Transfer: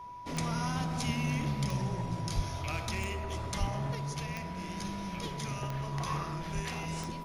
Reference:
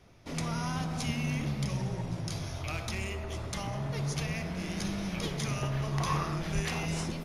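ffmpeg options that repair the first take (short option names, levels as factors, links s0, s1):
-filter_complex "[0:a]adeclick=t=4,bandreject=f=980:w=30,asplit=3[s0][s1][s2];[s0]afade=t=out:st=2.35:d=0.02[s3];[s1]highpass=f=140:w=0.5412,highpass=f=140:w=1.3066,afade=t=in:st=2.35:d=0.02,afade=t=out:st=2.47:d=0.02[s4];[s2]afade=t=in:st=2.47:d=0.02[s5];[s3][s4][s5]amix=inputs=3:normalize=0,asplit=3[s6][s7][s8];[s6]afade=t=out:st=3.59:d=0.02[s9];[s7]highpass=f=140:w=0.5412,highpass=f=140:w=1.3066,afade=t=in:st=3.59:d=0.02,afade=t=out:st=3.71:d=0.02[s10];[s8]afade=t=in:st=3.71:d=0.02[s11];[s9][s10][s11]amix=inputs=3:normalize=0,asetnsamples=n=441:p=0,asendcmd='3.95 volume volume 4.5dB',volume=1"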